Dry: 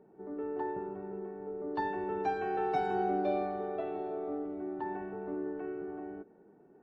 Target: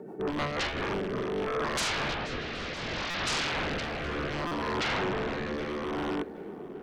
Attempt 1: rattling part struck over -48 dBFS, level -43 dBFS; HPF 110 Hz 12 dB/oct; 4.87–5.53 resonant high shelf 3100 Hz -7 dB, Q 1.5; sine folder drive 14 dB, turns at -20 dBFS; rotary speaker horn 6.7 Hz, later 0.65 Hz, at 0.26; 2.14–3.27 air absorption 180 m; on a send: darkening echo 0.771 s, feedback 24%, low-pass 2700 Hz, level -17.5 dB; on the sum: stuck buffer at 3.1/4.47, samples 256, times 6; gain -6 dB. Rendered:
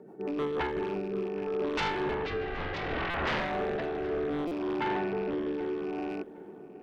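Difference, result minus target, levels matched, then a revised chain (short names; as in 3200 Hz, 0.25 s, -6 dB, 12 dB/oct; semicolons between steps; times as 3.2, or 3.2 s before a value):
sine folder: distortion -15 dB
rattling part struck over -48 dBFS, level -43 dBFS; HPF 110 Hz 12 dB/oct; 4.87–5.53 resonant high shelf 3100 Hz -7 dB, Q 1.5; sine folder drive 21 dB, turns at -20 dBFS; rotary speaker horn 6.7 Hz, later 0.65 Hz, at 0.26; 2.14–3.27 air absorption 180 m; on a send: darkening echo 0.771 s, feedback 24%, low-pass 2700 Hz, level -17.5 dB; on the sum: stuck buffer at 3.1/4.47, samples 256, times 6; gain -6 dB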